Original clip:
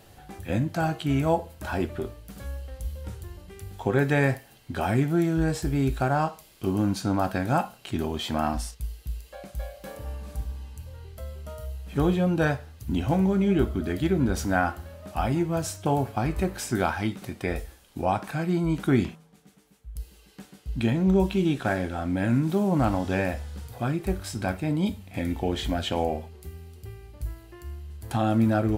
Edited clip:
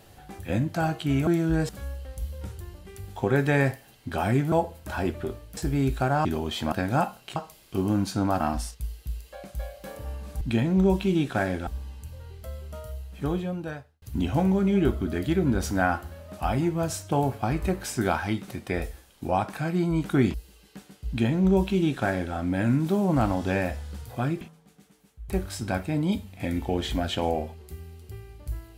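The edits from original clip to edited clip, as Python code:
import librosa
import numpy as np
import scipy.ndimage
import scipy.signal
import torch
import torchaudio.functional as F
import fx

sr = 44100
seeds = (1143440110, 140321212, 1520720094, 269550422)

y = fx.edit(x, sr, fx.swap(start_s=1.27, length_s=1.05, other_s=5.15, other_length_s=0.42),
    fx.swap(start_s=6.25, length_s=1.04, other_s=7.93, other_length_s=0.47),
    fx.fade_out_span(start_s=11.52, length_s=1.24),
    fx.move(start_s=19.08, length_s=0.89, to_s=24.04),
    fx.duplicate(start_s=20.71, length_s=1.26, to_s=10.41), tone=tone)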